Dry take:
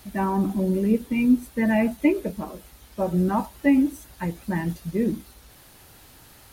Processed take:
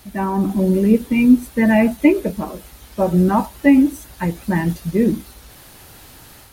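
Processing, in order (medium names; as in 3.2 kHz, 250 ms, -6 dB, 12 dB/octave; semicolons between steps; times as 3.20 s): level rider gain up to 5 dB; trim +2.5 dB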